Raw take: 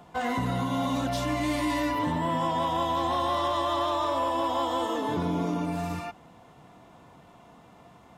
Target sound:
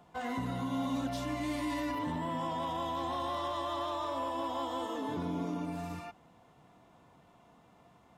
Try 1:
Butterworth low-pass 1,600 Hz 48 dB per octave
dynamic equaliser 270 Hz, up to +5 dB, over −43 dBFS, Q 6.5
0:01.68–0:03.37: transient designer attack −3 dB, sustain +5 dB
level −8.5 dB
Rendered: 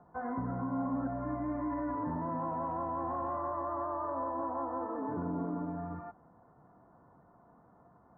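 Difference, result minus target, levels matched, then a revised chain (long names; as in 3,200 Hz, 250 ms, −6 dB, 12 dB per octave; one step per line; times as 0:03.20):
2,000 Hz band −7.0 dB
dynamic equaliser 270 Hz, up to +5 dB, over −43 dBFS, Q 6.5
0:01.68–0:03.37: transient designer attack −3 dB, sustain +5 dB
level −8.5 dB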